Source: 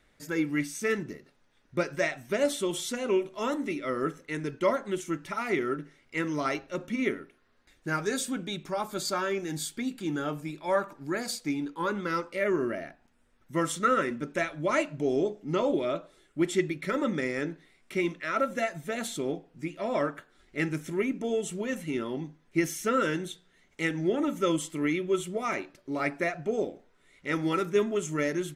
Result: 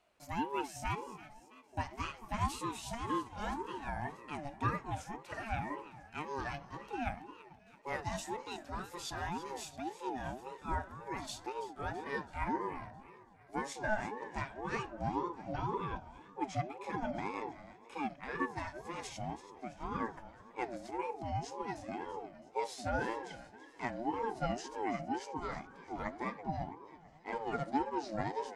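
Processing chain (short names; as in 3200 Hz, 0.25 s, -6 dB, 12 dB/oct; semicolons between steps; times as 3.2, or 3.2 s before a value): gliding pitch shift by -6.5 st starting unshifted; harmonic-percussive split percussive -3 dB; on a send: split-band echo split 920 Hz, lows 0.223 s, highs 0.331 s, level -14.5 dB; on the sum: ring modulator with a swept carrier 560 Hz, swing 25%, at 1.9 Hz; gain -4.5 dB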